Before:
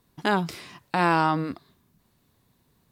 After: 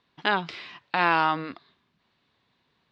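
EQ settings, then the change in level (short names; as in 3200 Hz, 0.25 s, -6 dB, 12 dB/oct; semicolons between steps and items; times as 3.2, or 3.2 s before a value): LPF 3600 Hz 24 dB/oct; tilt +3.5 dB/oct; 0.0 dB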